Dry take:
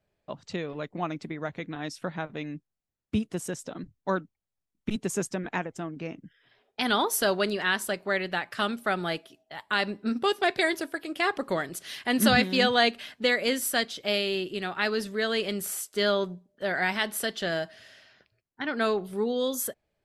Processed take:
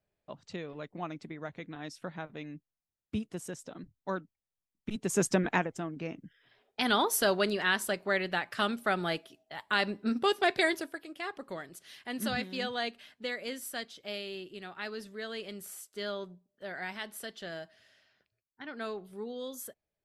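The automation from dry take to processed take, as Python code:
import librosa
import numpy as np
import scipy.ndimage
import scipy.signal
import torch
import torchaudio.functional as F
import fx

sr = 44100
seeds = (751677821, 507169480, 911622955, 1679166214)

y = fx.gain(x, sr, db=fx.line((4.92, -7.0), (5.32, 6.0), (5.83, -2.0), (10.68, -2.0), (11.17, -12.0)))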